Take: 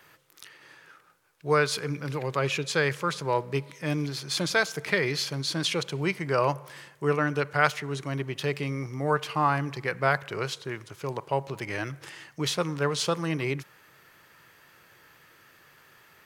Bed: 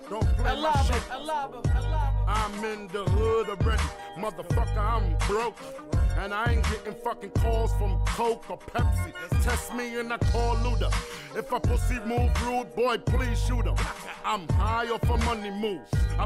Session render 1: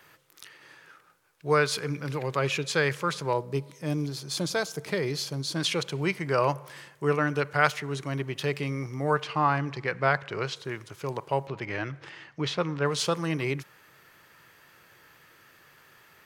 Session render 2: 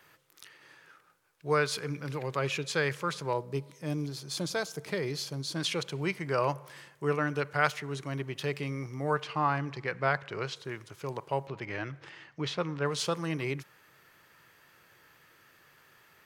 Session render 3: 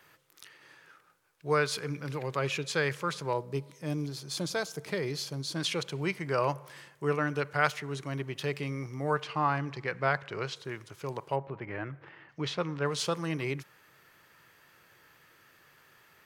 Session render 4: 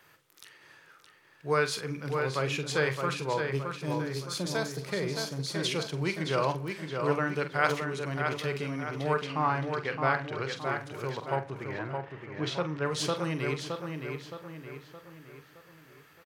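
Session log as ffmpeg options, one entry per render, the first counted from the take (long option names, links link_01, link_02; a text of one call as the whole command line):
ffmpeg -i in.wav -filter_complex "[0:a]asettb=1/sr,asplit=3[link_01][link_02][link_03];[link_01]atrim=end=3.334[link_04];[link_02]atrim=start=3.33:end=5.56,asetpts=PTS-STARTPTS,afade=type=in:duration=0.004:curve=qsin,afade=type=out:start_time=2.226:duration=0.004:curve=qsin,equalizer=frequency=2000:width=0.77:gain=-9[link_05];[link_03]atrim=start=5.556[link_06];[link_04][link_05]acrossfade=duration=0.004:curve1=hsin:curve2=qsin[link_07];[link_07][link_06]acrossfade=duration=0.004:curve1=qsin:curve2=hsin,asettb=1/sr,asplit=3[link_08][link_09][link_10];[link_08]atrim=end=9.224[link_11];[link_09]atrim=start=9.22:end=10.56,asetpts=PTS-STARTPTS,afade=type=in:duration=0.004:curve=qsin,afade=type=out:start_time=1.336:duration=0.004:curve=qsin,lowpass=5700[link_12];[link_10]atrim=start=10.556[link_13];[link_11][link_12]acrossfade=duration=0.004:curve1=hsin:curve2=qsin[link_14];[link_14][link_13]acrossfade=duration=0.004:curve1=qsin:curve2=hsin,asplit=3[link_15][link_16][link_17];[link_15]afade=type=out:start_time=11.46:duration=0.02[link_18];[link_16]lowpass=3800,afade=type=in:start_time=11.46:duration=0.02,afade=type=out:start_time=12.84:duration=0.02[link_19];[link_17]afade=type=in:start_time=12.84:duration=0.02[link_20];[link_18][link_19][link_20]amix=inputs=3:normalize=0" out.wav
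ffmpeg -i in.wav -af "volume=-4dB" out.wav
ffmpeg -i in.wav -filter_complex "[0:a]asplit=3[link_01][link_02][link_03];[link_01]afade=type=out:start_time=11.35:duration=0.02[link_04];[link_02]lowpass=1900,afade=type=in:start_time=11.35:duration=0.02,afade=type=out:start_time=12.28:duration=0.02[link_05];[link_03]afade=type=in:start_time=12.28:duration=0.02[link_06];[link_04][link_05][link_06]amix=inputs=3:normalize=0" out.wav
ffmpeg -i in.wav -filter_complex "[0:a]asplit=2[link_01][link_02];[link_02]adelay=45,volume=-10.5dB[link_03];[link_01][link_03]amix=inputs=2:normalize=0,asplit=2[link_04][link_05];[link_05]adelay=618,lowpass=frequency=4200:poles=1,volume=-5dB,asplit=2[link_06][link_07];[link_07]adelay=618,lowpass=frequency=4200:poles=1,volume=0.47,asplit=2[link_08][link_09];[link_09]adelay=618,lowpass=frequency=4200:poles=1,volume=0.47,asplit=2[link_10][link_11];[link_11]adelay=618,lowpass=frequency=4200:poles=1,volume=0.47,asplit=2[link_12][link_13];[link_13]adelay=618,lowpass=frequency=4200:poles=1,volume=0.47,asplit=2[link_14][link_15];[link_15]adelay=618,lowpass=frequency=4200:poles=1,volume=0.47[link_16];[link_04][link_06][link_08][link_10][link_12][link_14][link_16]amix=inputs=7:normalize=0" out.wav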